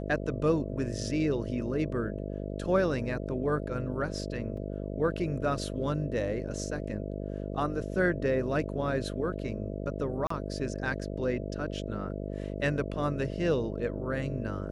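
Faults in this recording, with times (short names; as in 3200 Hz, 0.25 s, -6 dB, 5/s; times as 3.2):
buzz 50 Hz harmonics 13 -36 dBFS
4.57 gap 3.7 ms
10.27–10.3 gap 34 ms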